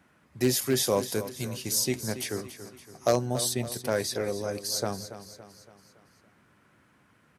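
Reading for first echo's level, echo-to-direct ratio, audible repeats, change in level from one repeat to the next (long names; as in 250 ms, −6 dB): −12.5 dB, −11.5 dB, 4, −6.0 dB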